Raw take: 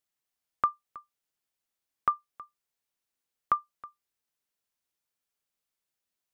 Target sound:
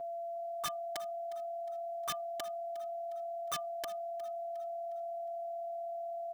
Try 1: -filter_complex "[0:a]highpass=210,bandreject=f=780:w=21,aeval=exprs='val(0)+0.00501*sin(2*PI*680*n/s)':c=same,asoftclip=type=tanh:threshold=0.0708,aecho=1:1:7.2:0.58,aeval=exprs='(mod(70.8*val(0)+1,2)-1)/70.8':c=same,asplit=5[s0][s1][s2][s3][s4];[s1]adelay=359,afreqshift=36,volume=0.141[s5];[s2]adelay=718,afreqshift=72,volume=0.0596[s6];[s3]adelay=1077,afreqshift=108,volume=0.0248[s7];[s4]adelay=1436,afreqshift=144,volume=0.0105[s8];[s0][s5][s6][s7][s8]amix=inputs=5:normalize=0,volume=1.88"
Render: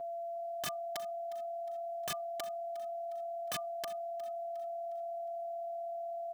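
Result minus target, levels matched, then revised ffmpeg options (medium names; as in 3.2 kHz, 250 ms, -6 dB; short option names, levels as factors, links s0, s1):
saturation: distortion -5 dB
-filter_complex "[0:a]highpass=210,bandreject=f=780:w=21,aeval=exprs='val(0)+0.00501*sin(2*PI*680*n/s)':c=same,asoftclip=type=tanh:threshold=0.0355,aecho=1:1:7.2:0.58,aeval=exprs='(mod(70.8*val(0)+1,2)-1)/70.8':c=same,asplit=5[s0][s1][s2][s3][s4];[s1]adelay=359,afreqshift=36,volume=0.141[s5];[s2]adelay=718,afreqshift=72,volume=0.0596[s6];[s3]adelay=1077,afreqshift=108,volume=0.0248[s7];[s4]adelay=1436,afreqshift=144,volume=0.0105[s8];[s0][s5][s6][s7][s8]amix=inputs=5:normalize=0,volume=1.88"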